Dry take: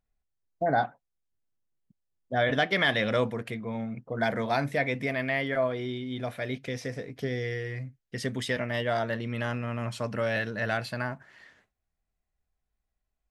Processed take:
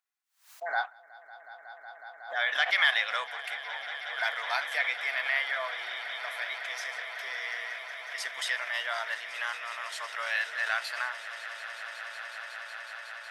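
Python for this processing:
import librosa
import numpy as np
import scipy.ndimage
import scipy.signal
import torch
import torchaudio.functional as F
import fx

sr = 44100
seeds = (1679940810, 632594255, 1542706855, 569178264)

y = scipy.signal.sosfilt(scipy.signal.butter(4, 970.0, 'highpass', fs=sr, output='sos'), x)
y = fx.echo_swell(y, sr, ms=184, loudest=8, wet_db=-17.0)
y = fx.pre_swell(y, sr, db_per_s=140.0)
y = F.gain(torch.from_numpy(y), 2.0).numpy()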